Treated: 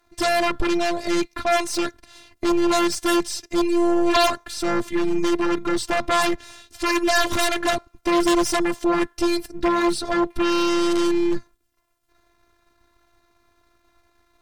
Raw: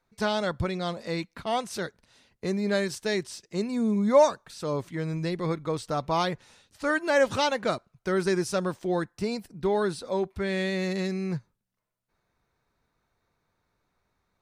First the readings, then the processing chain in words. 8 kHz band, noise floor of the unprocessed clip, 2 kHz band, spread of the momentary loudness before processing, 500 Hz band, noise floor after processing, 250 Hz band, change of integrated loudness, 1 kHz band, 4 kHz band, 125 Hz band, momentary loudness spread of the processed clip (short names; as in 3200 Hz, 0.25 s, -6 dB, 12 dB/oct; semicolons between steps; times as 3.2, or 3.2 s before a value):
+11.0 dB, -78 dBFS, +6.5 dB, 10 LU, +3.5 dB, -66 dBFS, +8.5 dB, +6.5 dB, +7.5 dB, +9.5 dB, -6.5 dB, 6 LU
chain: half-wave gain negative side -7 dB; robotiser 345 Hz; in parallel at -7 dB: sine folder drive 18 dB, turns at -11 dBFS; on the sum: gain +1.5 dB